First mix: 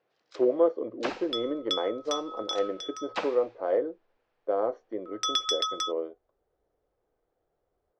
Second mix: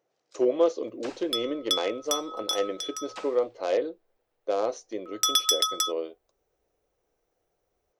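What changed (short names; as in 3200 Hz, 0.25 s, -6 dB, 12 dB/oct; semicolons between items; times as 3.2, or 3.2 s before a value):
speech: remove polynomial smoothing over 41 samples; first sound -10.5 dB; master: remove air absorption 160 m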